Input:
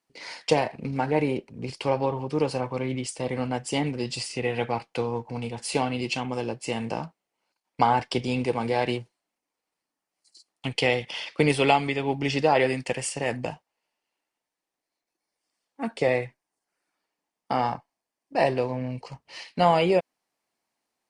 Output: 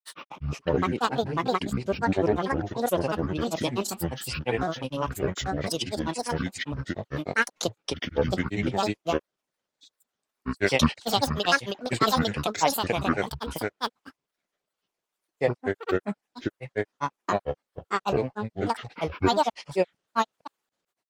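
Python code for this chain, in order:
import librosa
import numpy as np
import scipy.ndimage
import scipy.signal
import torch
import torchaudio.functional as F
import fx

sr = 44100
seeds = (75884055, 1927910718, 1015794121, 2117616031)

y = fx.granulator(x, sr, seeds[0], grain_ms=100.0, per_s=20.0, spray_ms=636.0, spread_st=12)
y = y * librosa.db_to_amplitude(1.5)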